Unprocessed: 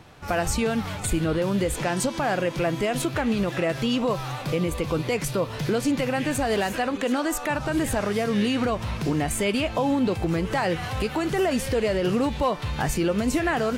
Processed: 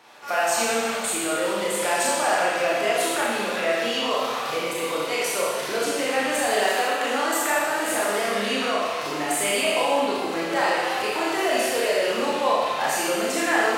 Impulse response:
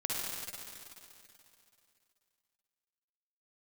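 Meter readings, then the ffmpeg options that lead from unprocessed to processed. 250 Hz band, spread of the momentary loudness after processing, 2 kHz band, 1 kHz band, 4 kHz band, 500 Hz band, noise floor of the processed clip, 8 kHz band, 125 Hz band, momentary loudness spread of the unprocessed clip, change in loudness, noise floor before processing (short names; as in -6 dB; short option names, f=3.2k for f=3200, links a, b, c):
-6.0 dB, 4 LU, +6.0 dB, +5.5 dB, +6.0 dB, +2.0 dB, -28 dBFS, +6.5 dB, -17.0 dB, 3 LU, +2.0 dB, -34 dBFS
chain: -filter_complex "[0:a]highpass=570[a];[1:a]atrim=start_sample=2205,asetrate=79380,aresample=44100[b];[a][b]afir=irnorm=-1:irlink=0,volume=6dB"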